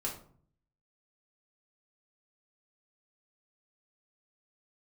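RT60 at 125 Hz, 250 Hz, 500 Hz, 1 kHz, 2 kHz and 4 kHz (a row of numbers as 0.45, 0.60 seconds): 0.85, 0.75, 0.55, 0.50, 0.35, 0.30 seconds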